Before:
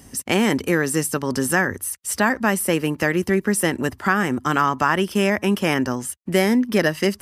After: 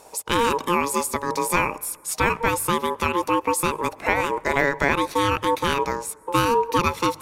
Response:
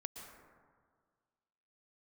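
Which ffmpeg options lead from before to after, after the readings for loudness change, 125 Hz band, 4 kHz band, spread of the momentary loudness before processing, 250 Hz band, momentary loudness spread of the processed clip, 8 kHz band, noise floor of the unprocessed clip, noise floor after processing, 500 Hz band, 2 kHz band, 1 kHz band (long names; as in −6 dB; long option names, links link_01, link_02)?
−2.0 dB, −5.0 dB, −0.5 dB, 4 LU, −7.5 dB, 5 LU, −2.0 dB, −49 dBFS, −48 dBFS, −2.0 dB, −2.5 dB, +3.0 dB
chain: -filter_complex "[0:a]aeval=exprs='val(0)*sin(2*PI*700*n/s)':channel_layout=same,bandreject=frequency=51.02:width_type=h:width=4,bandreject=frequency=102.04:width_type=h:width=4,bandreject=frequency=153.06:width_type=h:width=4,asplit=2[link_01][link_02];[1:a]atrim=start_sample=2205[link_03];[link_02][link_03]afir=irnorm=-1:irlink=0,volume=-15.5dB[link_04];[link_01][link_04]amix=inputs=2:normalize=0"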